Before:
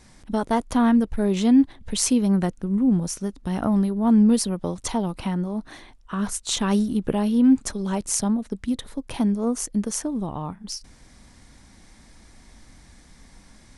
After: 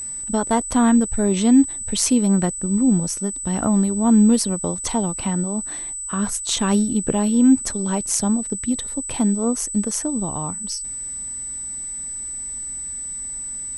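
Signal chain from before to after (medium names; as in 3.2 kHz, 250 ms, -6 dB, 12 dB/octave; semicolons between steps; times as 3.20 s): whistle 8 kHz -30 dBFS; trim +2.5 dB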